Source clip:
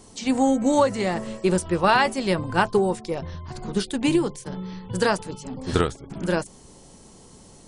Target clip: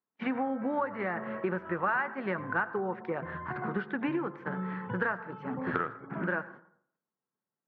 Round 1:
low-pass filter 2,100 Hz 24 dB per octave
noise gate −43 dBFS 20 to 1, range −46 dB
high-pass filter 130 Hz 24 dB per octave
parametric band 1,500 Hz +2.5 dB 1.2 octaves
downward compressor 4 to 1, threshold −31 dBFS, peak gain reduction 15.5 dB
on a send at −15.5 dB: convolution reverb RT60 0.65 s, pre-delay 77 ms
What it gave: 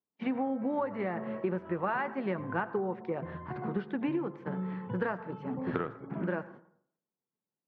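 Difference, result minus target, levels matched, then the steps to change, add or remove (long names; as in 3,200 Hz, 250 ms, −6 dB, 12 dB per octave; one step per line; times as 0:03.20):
2,000 Hz band −6.0 dB
change: parametric band 1,500 Hz +14 dB 1.2 octaves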